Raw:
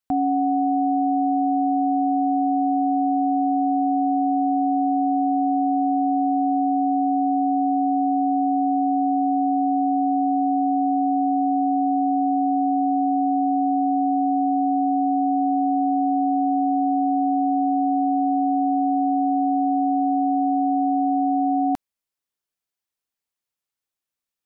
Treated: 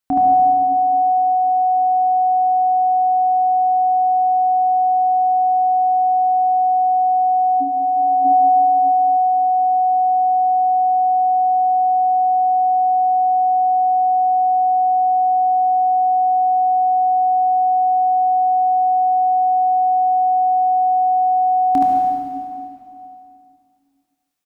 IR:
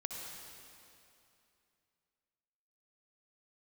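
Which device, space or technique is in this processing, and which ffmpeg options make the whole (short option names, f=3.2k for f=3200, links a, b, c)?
stairwell: -filter_complex "[0:a]asplit=3[a][b][c];[a]afade=t=out:st=7.6:d=0.02[d];[b]asplit=2[e][f];[f]adelay=49,volume=-5.5dB[g];[e][g]amix=inputs=2:normalize=0,afade=t=in:st=7.6:d=0.02,afade=t=out:st=8.24:d=0.02[h];[c]afade=t=in:st=8.24:d=0.02[i];[d][h][i]amix=inputs=3:normalize=0[j];[1:a]atrim=start_sample=2205[k];[j][k]afir=irnorm=-1:irlink=0,aecho=1:1:27|74:0.355|0.668,volume=6.5dB"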